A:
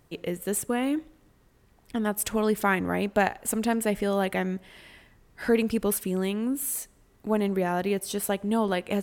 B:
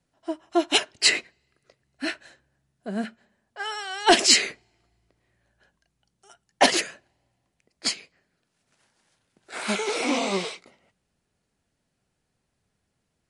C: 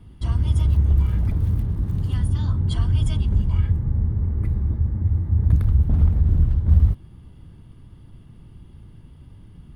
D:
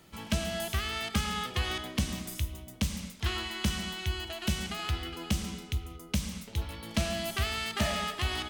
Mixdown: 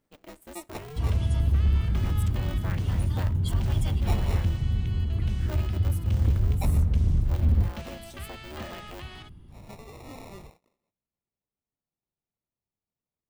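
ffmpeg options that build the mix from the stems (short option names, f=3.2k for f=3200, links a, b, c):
-filter_complex "[0:a]aeval=exprs='val(0)*sgn(sin(2*PI*150*n/s))':c=same,volume=-16.5dB[a];[1:a]acrusher=samples=28:mix=1:aa=0.000001,volume=-19.5dB[b];[2:a]flanger=delay=5:depth=8:regen=-78:speed=1.7:shape=triangular,adelay=750,volume=0dB[c];[3:a]acrossover=split=3900[d][e];[e]acompressor=threshold=-46dB:ratio=4:attack=1:release=60[f];[d][f]amix=inputs=2:normalize=0,adelay=800,volume=-10.5dB[g];[a][b][c][g]amix=inputs=4:normalize=0,asoftclip=type=hard:threshold=-16.5dB"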